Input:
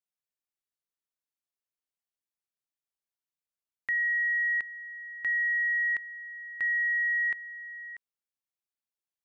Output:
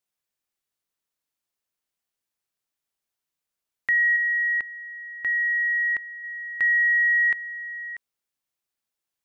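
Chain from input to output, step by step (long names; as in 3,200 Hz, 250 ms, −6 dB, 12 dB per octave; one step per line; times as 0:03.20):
0:04.16–0:06.24: high-shelf EQ 2,000 Hz −7.5 dB
level +7.5 dB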